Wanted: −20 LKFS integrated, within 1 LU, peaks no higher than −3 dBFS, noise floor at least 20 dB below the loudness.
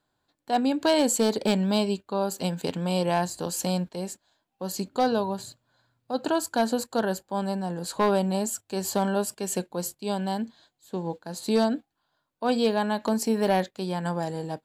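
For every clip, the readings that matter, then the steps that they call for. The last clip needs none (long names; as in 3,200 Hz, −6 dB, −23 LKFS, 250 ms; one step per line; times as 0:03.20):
share of clipped samples 0.2%; peaks flattened at −14.5 dBFS; integrated loudness −27.0 LKFS; sample peak −14.5 dBFS; target loudness −20.0 LKFS
→ clipped peaks rebuilt −14.5 dBFS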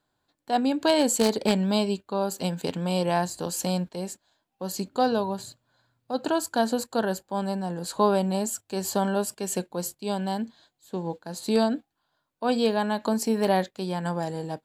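share of clipped samples 0.0%; integrated loudness −27.0 LKFS; sample peak −5.5 dBFS; target loudness −20.0 LKFS
→ level +7 dB
brickwall limiter −3 dBFS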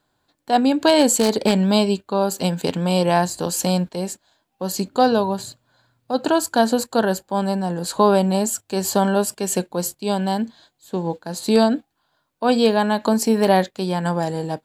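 integrated loudness −20.0 LKFS; sample peak −3.0 dBFS; background noise floor −71 dBFS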